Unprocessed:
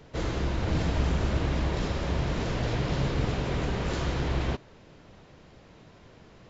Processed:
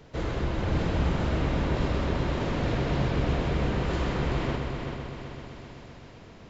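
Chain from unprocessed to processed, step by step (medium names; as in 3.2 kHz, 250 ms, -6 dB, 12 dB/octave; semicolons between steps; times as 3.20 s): on a send: multi-head delay 128 ms, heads first and third, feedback 67%, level -7 dB; on the sum: dynamic bell 6.2 kHz, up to -7 dB, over -56 dBFS, Q 0.84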